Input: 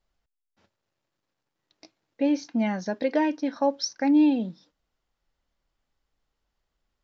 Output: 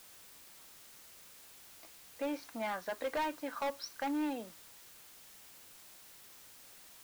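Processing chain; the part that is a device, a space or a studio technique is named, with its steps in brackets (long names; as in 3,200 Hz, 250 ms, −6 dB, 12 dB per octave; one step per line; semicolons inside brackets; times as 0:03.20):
drive-through speaker (band-pass filter 490–3,400 Hz; parametric band 1,200 Hz +12 dB 0.58 octaves; hard clipping −25 dBFS, distortion −8 dB; white noise bed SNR 14 dB)
level −6 dB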